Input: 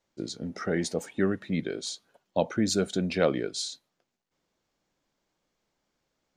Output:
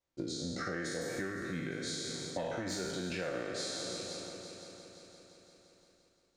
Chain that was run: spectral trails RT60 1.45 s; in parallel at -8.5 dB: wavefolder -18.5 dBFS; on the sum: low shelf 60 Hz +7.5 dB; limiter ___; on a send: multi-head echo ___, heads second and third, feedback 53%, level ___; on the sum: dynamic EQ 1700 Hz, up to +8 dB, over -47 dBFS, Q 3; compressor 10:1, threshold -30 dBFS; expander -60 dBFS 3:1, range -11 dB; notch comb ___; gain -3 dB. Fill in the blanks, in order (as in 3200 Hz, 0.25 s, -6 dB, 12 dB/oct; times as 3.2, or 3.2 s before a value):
-11.5 dBFS, 0.172 s, -17.5 dB, 210 Hz